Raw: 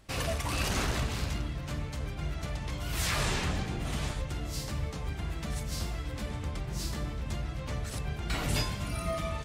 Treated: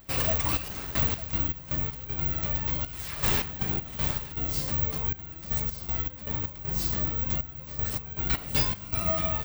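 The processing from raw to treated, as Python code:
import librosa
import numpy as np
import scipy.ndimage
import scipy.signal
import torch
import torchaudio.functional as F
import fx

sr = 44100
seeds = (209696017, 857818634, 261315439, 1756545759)

p1 = fx.step_gate(x, sr, bpm=79, pattern='xxx..x.x.x.x', floor_db=-12.0, edge_ms=4.5)
p2 = p1 + fx.echo_single(p1, sr, ms=903, db=-17.5, dry=0)
p3 = (np.kron(p2[::2], np.eye(2)[0]) * 2)[:len(p2)]
y = F.gain(torch.from_numpy(p3), 2.5).numpy()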